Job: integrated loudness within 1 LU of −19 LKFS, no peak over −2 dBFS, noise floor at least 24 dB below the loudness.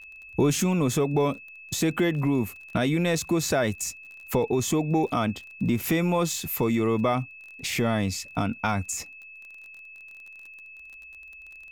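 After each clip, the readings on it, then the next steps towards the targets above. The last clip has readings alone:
crackle rate 25 per second; interfering tone 2,600 Hz; level of the tone −43 dBFS; integrated loudness −26.0 LKFS; sample peak −12.5 dBFS; target loudness −19.0 LKFS
→ click removal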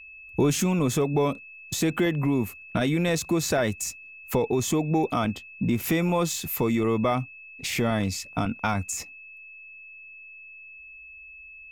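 crackle rate 0.77 per second; interfering tone 2,600 Hz; level of the tone −43 dBFS
→ notch filter 2,600 Hz, Q 30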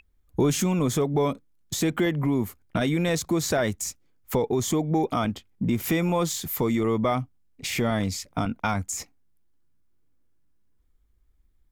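interfering tone none found; integrated loudness −26.0 LKFS; sample peak −12.5 dBFS; target loudness −19.0 LKFS
→ level +7 dB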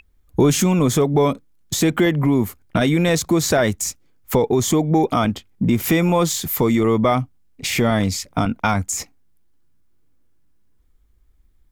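integrated loudness −19.0 LKFS; sample peak −5.5 dBFS; background noise floor −56 dBFS

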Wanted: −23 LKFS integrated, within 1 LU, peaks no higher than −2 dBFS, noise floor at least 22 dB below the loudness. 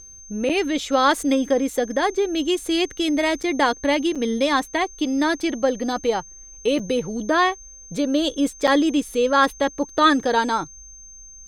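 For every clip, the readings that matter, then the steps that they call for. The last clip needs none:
number of dropouts 5; longest dropout 5.9 ms; interfering tone 6,300 Hz; level of the tone −41 dBFS; integrated loudness −21.5 LKFS; sample peak −4.0 dBFS; target loudness −23.0 LKFS
→ repair the gap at 0:00.49/0:03.43/0:04.15/0:06.79/0:08.67, 5.9 ms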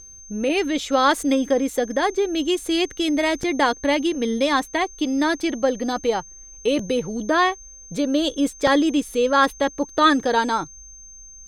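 number of dropouts 0; interfering tone 6,300 Hz; level of the tone −41 dBFS
→ notch filter 6,300 Hz, Q 30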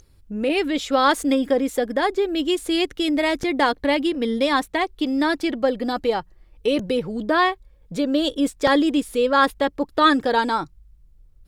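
interfering tone none found; integrated loudness −21.5 LKFS; sample peak −4.0 dBFS; target loudness −23.0 LKFS
→ level −1.5 dB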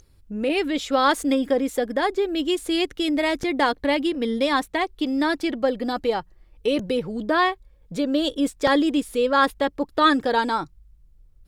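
integrated loudness −23.0 LKFS; sample peak −5.5 dBFS; background noise floor −55 dBFS

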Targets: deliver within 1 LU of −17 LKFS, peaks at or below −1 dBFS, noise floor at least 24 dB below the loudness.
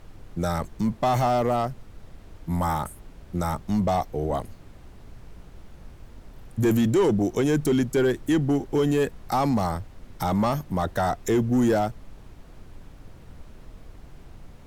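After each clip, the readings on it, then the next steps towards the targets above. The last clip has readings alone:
share of clipped samples 1.0%; peaks flattened at −15.5 dBFS; background noise floor −47 dBFS; target noise floor −49 dBFS; integrated loudness −24.5 LKFS; sample peak −15.5 dBFS; target loudness −17.0 LKFS
→ clipped peaks rebuilt −15.5 dBFS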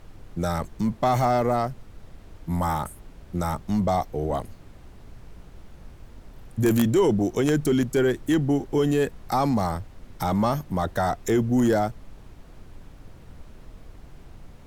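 share of clipped samples 0.0%; background noise floor −47 dBFS; target noise floor −49 dBFS
→ noise reduction from a noise print 6 dB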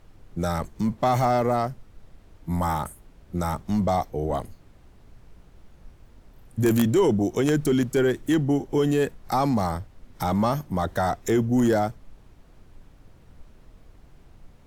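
background noise floor −53 dBFS; integrated loudness −24.5 LKFS; sample peak −6.5 dBFS; target loudness −17.0 LKFS
→ level +7.5 dB
brickwall limiter −1 dBFS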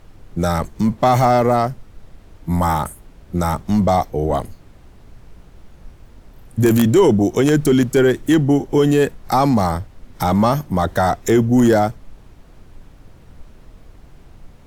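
integrated loudness −17.0 LKFS; sample peak −1.0 dBFS; background noise floor −46 dBFS

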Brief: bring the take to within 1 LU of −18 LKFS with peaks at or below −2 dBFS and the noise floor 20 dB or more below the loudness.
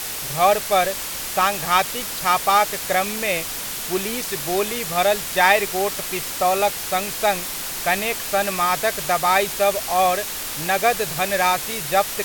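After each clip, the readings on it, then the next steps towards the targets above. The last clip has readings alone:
background noise floor −29 dBFS; target noise floor −41 dBFS; integrated loudness −20.5 LKFS; sample peak −2.5 dBFS; target loudness −18.0 LKFS
→ broadband denoise 12 dB, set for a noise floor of −29 dBFS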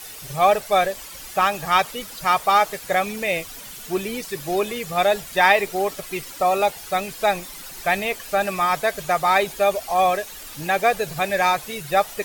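background noise floor −38 dBFS; target noise floor −42 dBFS
→ broadband denoise 6 dB, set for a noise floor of −38 dBFS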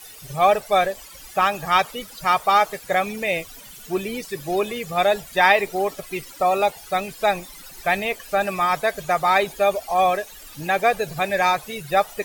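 background noise floor −42 dBFS; integrated loudness −21.5 LKFS; sample peak −2.5 dBFS; target loudness −18.0 LKFS
→ level +3.5 dB
brickwall limiter −2 dBFS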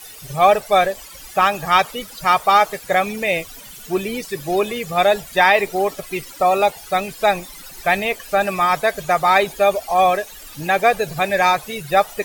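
integrated loudness −18.0 LKFS; sample peak −2.0 dBFS; background noise floor −39 dBFS

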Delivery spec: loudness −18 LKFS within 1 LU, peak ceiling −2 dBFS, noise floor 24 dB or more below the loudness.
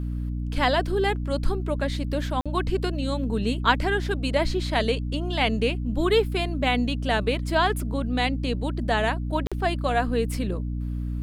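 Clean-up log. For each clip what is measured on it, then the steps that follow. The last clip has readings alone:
number of dropouts 2; longest dropout 46 ms; mains hum 60 Hz; hum harmonics up to 300 Hz; level of the hum −26 dBFS; integrated loudness −25.5 LKFS; sample peak −5.0 dBFS; target loudness −18.0 LKFS
→ repair the gap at 0:02.41/0:09.47, 46 ms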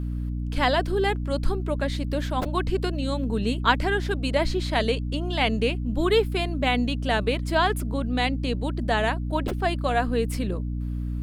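number of dropouts 0; mains hum 60 Hz; hum harmonics up to 300 Hz; level of the hum −26 dBFS
→ hum removal 60 Hz, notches 5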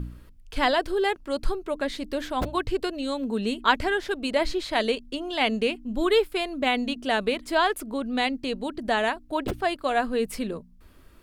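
mains hum none found; integrated loudness −26.5 LKFS; sample peak −5.5 dBFS; target loudness −18.0 LKFS
→ level +8.5 dB
brickwall limiter −2 dBFS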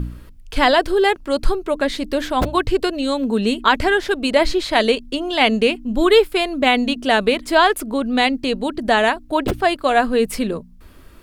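integrated loudness −18.0 LKFS; sample peak −2.0 dBFS; background noise floor −43 dBFS

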